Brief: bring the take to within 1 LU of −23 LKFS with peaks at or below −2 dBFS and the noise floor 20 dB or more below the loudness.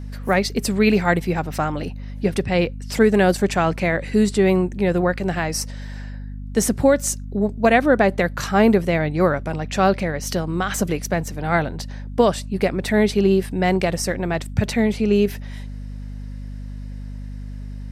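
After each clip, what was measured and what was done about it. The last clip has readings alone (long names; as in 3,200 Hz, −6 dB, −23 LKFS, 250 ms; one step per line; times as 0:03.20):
mains hum 50 Hz; hum harmonics up to 250 Hz; level of the hum −29 dBFS; integrated loudness −20.0 LKFS; sample peak −3.5 dBFS; target loudness −23.0 LKFS
→ hum removal 50 Hz, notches 5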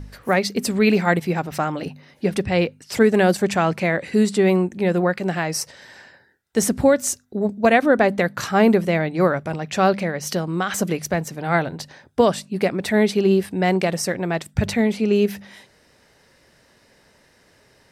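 mains hum none found; integrated loudness −20.5 LKFS; sample peak −3.5 dBFS; target loudness −23.0 LKFS
→ level −2.5 dB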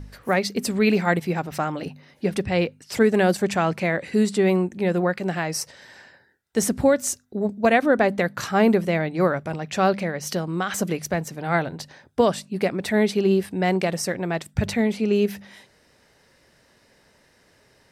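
integrated loudness −23.0 LKFS; sample peak −6.0 dBFS; background noise floor −60 dBFS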